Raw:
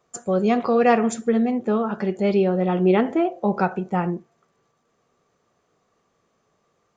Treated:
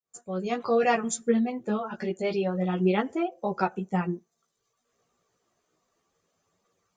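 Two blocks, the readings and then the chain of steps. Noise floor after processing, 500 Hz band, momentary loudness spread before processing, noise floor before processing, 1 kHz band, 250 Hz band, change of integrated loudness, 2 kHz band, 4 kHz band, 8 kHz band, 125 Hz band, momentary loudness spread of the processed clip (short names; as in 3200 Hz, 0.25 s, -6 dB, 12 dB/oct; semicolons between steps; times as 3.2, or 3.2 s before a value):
-79 dBFS, -7.0 dB, 7 LU, -69 dBFS, -5.5 dB, -7.0 dB, -6.5 dB, -4.0 dB, -2.0 dB, n/a, -5.5 dB, 9 LU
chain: opening faded in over 0.71 s; reverb removal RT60 0.9 s; high shelf 4300 Hz +10.5 dB; chorus voices 2, 0.3 Hz, delay 14 ms, depth 3.6 ms; gain -2 dB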